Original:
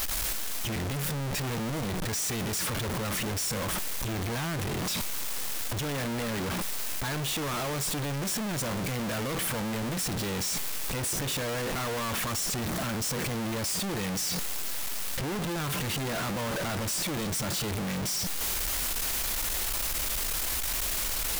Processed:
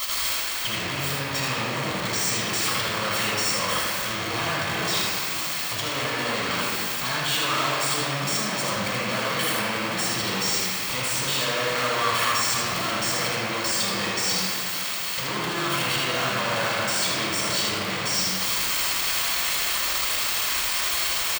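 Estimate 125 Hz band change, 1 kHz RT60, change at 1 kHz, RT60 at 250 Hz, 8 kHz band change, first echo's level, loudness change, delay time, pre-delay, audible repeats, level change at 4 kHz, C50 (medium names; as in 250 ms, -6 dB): -1.5 dB, 2.4 s, +9.5 dB, 3.2 s, +4.0 dB, -3.5 dB, +6.5 dB, 79 ms, 15 ms, 1, +9.5 dB, -3.5 dB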